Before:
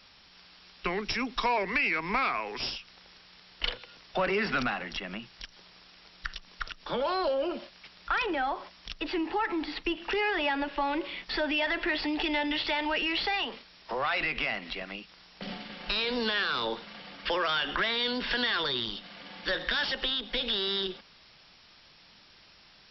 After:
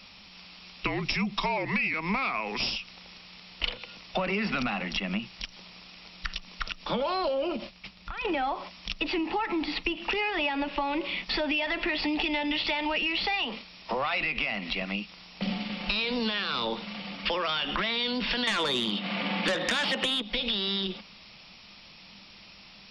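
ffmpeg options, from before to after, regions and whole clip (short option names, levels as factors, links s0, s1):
-filter_complex "[0:a]asettb=1/sr,asplit=3[s0][s1][s2];[s0]atrim=end=0.864[s3];[s1]atrim=start=0.86:end=1.94,asetpts=PTS-STARTPTS,afade=t=in:d=0.004:c=qsin,afade=t=out:st=1.076:d=0.004:c=qsin,bandreject=f=1500:w=25,afreqshift=-48[s4];[s2]atrim=start=1.936[s5];[s3][s4]acrossfade=d=0.004:c1=hsin:c2=qsin[s6];[s6][s5]acrossfade=d=0.004:c1=qsin:c2=hsin,asettb=1/sr,asplit=3[s7][s8][s9];[s7]atrim=end=7.564[s10];[s8]atrim=start=7.56:end=8.25,asetpts=PTS-STARTPTS,afade=t=in:d=0.004:c=qsin,afade=t=out:st=0.686:d=0.004:c=qsin,agate=range=0.0224:threshold=0.00316:ratio=3:release=100:detection=peak,lowshelf=f=160:g=10,acompressor=threshold=0.0126:ratio=10:attack=3.2:release=140:knee=1:detection=peak[s11];[s9]atrim=start=8.246[s12];[s10][s11]acrossfade=d=0.004:c1=hsin:c2=qsin[s13];[s13][s12]acrossfade=d=0.004:c1=qsin:c2=hsin,asettb=1/sr,asplit=3[s14][s15][s16];[s14]atrim=end=18.474[s17];[s15]atrim=start=18.47:end=20.22,asetpts=PTS-STARTPTS,afade=t=in:d=0.004:c=qsin,afade=t=out:st=1.746:d=0.004:c=qsin,highpass=180,lowpass=3000,aeval=exprs='0.15*sin(PI/2*2.51*val(0)/0.15)':c=same[s18];[s16]atrim=start=20.216[s19];[s17][s18]acrossfade=d=0.004:c1=hsin:c2=qsin[s20];[s20][s19]acrossfade=d=0.004:c1=qsin:c2=hsin,equalizer=f=200:t=o:w=0.33:g=9,equalizer=f=400:t=o:w=0.33:g=-4,equalizer=f=1600:t=o:w=0.33:g=-8,equalizer=f=2500:t=o:w=0.33:g=5,acompressor=threshold=0.0282:ratio=6,volume=1.88"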